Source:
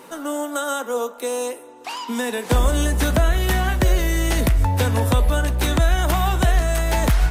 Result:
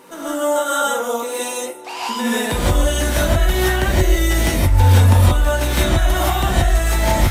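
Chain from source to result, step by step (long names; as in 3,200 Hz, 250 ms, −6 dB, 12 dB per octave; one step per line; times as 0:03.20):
downward compressor, threshold −17 dBFS, peak gain reduction 5.5 dB
reverb whose tail is shaped and stops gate 200 ms rising, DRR −7.5 dB
level −2.5 dB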